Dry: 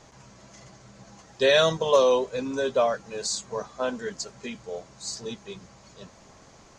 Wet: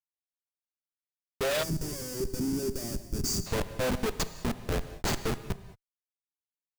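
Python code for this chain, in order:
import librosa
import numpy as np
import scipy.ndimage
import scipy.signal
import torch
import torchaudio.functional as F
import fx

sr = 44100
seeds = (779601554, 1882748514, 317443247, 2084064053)

y = fx.schmitt(x, sr, flips_db=-30.0)
y = fx.rev_gated(y, sr, seeds[0], gate_ms=240, shape='flat', drr_db=11.5)
y = fx.spec_box(y, sr, start_s=1.63, length_s=1.83, low_hz=410.0, high_hz=4500.0, gain_db=-17)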